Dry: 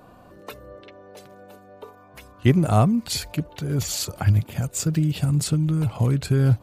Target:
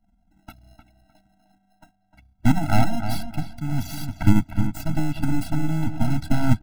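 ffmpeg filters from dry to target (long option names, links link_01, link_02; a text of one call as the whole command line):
ffmpeg -i in.wav -filter_complex "[0:a]aeval=exprs='0.531*(cos(1*acos(clip(val(0)/0.531,-1,1)))-cos(1*PI/2))+0.0944*(cos(3*acos(clip(val(0)/0.531,-1,1)))-cos(3*PI/2))+0.106*(cos(6*acos(clip(val(0)/0.531,-1,1)))-cos(6*PI/2))+0.0944*(cos(7*acos(clip(val(0)/0.531,-1,1)))-cos(7*PI/2))':channel_layout=same,anlmdn=0.398,equalizer=frequency=7200:width=2.8:gain=-9.5,acrossover=split=1400[link_01][link_02];[link_02]alimiter=limit=-20dB:level=0:latency=1:release=167[link_03];[link_01][link_03]amix=inputs=2:normalize=0,bandreject=frequency=440:width=12,asplit=2[link_04][link_05];[link_05]acrusher=samples=38:mix=1:aa=0.000001,volume=-3dB[link_06];[link_04][link_06]amix=inputs=2:normalize=0,asplit=2[link_07][link_08];[link_08]adelay=305,lowpass=frequency=2800:poles=1,volume=-8.5dB,asplit=2[link_09][link_10];[link_10]adelay=305,lowpass=frequency=2800:poles=1,volume=0.26,asplit=2[link_11][link_12];[link_12]adelay=305,lowpass=frequency=2800:poles=1,volume=0.26[link_13];[link_07][link_09][link_11][link_13]amix=inputs=4:normalize=0,afftfilt=real='re*eq(mod(floor(b*sr/1024/320),2),0)':imag='im*eq(mod(floor(b*sr/1024/320),2),0)':win_size=1024:overlap=0.75,volume=-1.5dB" out.wav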